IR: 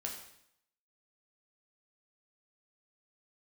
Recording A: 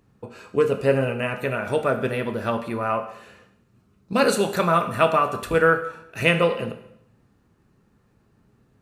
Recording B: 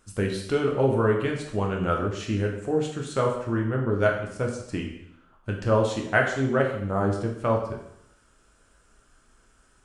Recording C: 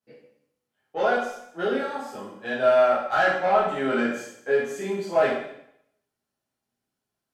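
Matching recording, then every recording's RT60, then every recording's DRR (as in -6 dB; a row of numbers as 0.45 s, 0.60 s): B; 0.70 s, 0.70 s, 0.70 s; 6.0 dB, -0.5 dB, -10.0 dB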